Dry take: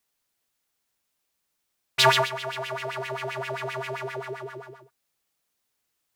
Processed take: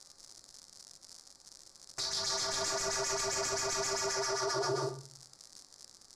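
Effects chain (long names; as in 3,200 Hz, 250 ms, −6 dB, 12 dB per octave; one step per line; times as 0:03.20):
running median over 15 samples
dynamic equaliser 6,000 Hz, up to +4 dB, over −50 dBFS, Q 1.7
compressor whose output falls as the input rises −41 dBFS, ratio −1
convolution reverb RT60 0.40 s, pre-delay 4 ms, DRR −2.5 dB
surface crackle 130 per second −50 dBFS
low-pass filter 9,600 Hz 24 dB per octave
high shelf with overshoot 3,800 Hz +11 dB, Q 3
brickwall limiter −30 dBFS, peak gain reduction 17.5 dB
level +6 dB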